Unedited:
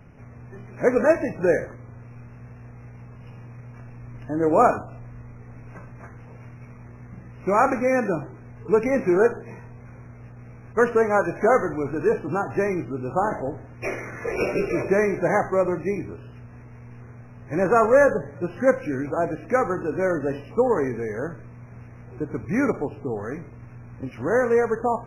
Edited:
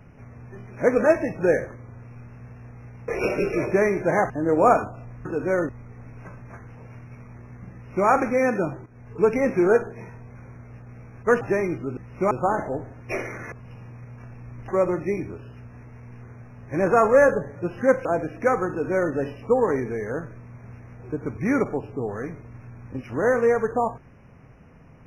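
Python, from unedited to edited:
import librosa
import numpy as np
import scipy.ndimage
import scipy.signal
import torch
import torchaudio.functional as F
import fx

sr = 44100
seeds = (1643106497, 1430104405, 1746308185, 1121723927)

y = fx.edit(x, sr, fx.swap(start_s=3.08, length_s=1.16, other_s=14.25, other_length_s=1.22),
    fx.duplicate(start_s=7.23, length_s=0.34, to_s=13.04),
    fx.fade_in_from(start_s=8.36, length_s=0.33, curve='qsin', floor_db=-12.5),
    fx.cut(start_s=10.91, length_s=1.57),
    fx.cut(start_s=18.84, length_s=0.29),
    fx.duplicate(start_s=19.77, length_s=0.44, to_s=5.19), tone=tone)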